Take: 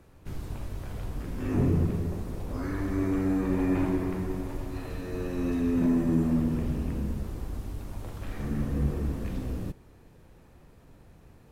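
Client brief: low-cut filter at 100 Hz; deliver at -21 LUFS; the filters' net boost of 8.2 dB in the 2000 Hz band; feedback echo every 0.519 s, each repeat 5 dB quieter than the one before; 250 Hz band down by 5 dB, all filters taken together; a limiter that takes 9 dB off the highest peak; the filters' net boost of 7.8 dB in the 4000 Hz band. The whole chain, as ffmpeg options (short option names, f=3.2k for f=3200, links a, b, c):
-af "highpass=100,equalizer=f=250:t=o:g=-6,equalizer=f=2k:t=o:g=8.5,equalizer=f=4k:t=o:g=7,alimiter=level_in=1.5dB:limit=-24dB:level=0:latency=1,volume=-1.5dB,aecho=1:1:519|1038|1557|2076|2595|3114|3633:0.562|0.315|0.176|0.0988|0.0553|0.031|0.0173,volume=14dB"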